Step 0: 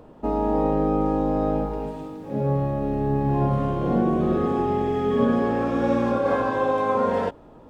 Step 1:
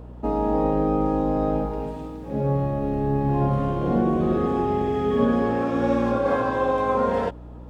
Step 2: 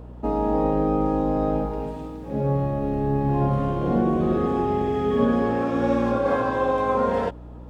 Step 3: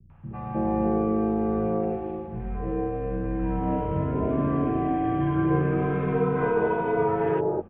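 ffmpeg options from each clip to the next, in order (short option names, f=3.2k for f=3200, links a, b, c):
-af "aeval=exprs='val(0)+0.0112*(sin(2*PI*60*n/s)+sin(2*PI*2*60*n/s)/2+sin(2*PI*3*60*n/s)/3+sin(2*PI*4*60*n/s)/4+sin(2*PI*5*60*n/s)/5)':c=same"
-af anull
-filter_complex "[0:a]acrossover=split=230|1000[a][b][c];[c]adelay=100[d];[b]adelay=310[e];[a][e][d]amix=inputs=3:normalize=0,highpass=f=160:t=q:w=0.5412,highpass=f=160:t=q:w=1.307,lowpass=f=2.7k:t=q:w=0.5176,lowpass=f=2.7k:t=q:w=0.7071,lowpass=f=2.7k:t=q:w=1.932,afreqshift=-91"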